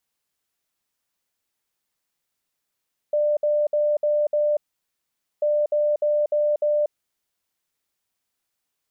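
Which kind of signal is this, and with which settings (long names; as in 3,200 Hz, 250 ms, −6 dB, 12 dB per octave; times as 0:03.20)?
beeps in groups sine 595 Hz, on 0.24 s, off 0.06 s, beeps 5, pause 0.85 s, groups 2, −17.5 dBFS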